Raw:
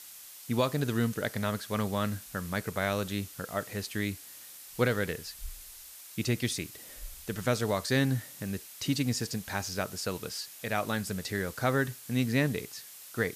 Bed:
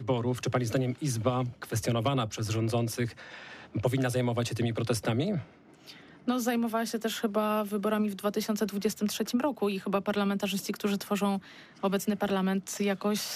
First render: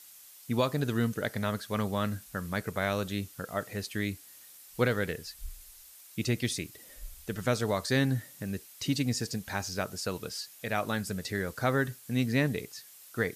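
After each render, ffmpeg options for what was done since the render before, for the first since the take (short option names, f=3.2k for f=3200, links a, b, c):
-af "afftdn=nr=6:nf=-49"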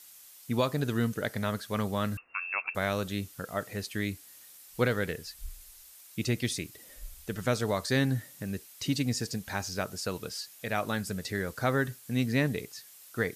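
-filter_complex "[0:a]asettb=1/sr,asplit=3[a][b][c];[a]atrim=end=2.174[d];[b]atrim=start=2.17:end=2.75,asetpts=PTS-STARTPTS,afade=t=in:d=0.004:c=qsin,afade=t=out:st=0.576:d=0.004:c=qsin,lowpass=f=2.4k:t=q:w=0.5098,lowpass=f=2.4k:t=q:w=0.6013,lowpass=f=2.4k:t=q:w=0.9,lowpass=f=2.4k:t=q:w=2.563,afreqshift=-2800[e];[c]atrim=start=2.746[f];[d][e]acrossfade=d=0.004:c1=hsin:c2=qsin[g];[g][f]acrossfade=d=0.004:c1=qsin:c2=hsin"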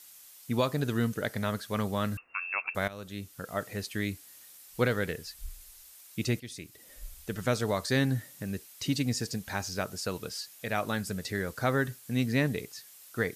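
-filter_complex "[0:a]asplit=3[a][b][c];[a]atrim=end=2.88,asetpts=PTS-STARTPTS,afade=t=out:st=2.876:d=0.004:c=hsin:silence=0.149624[d];[b]atrim=start=2.88:end=6.4,asetpts=PTS-STARTPTS,afade=t=in:d=0.68:silence=0.149624,afade=t=out:st=3.516:d=0.004:c=hsin:silence=0.158489[e];[c]atrim=start=6.4,asetpts=PTS-STARTPTS,afade=t=in:d=0.63:silence=0.158489[f];[d][e][f]concat=n=3:v=0:a=1"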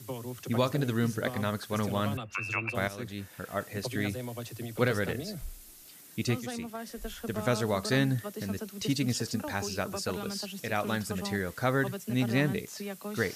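-filter_complex "[1:a]volume=-10dB[a];[0:a][a]amix=inputs=2:normalize=0"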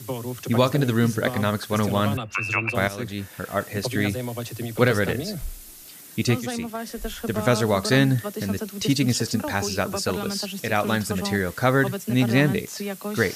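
-af "volume=8dB"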